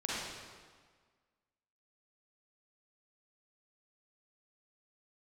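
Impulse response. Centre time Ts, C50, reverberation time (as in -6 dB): 118 ms, -4.5 dB, 1.6 s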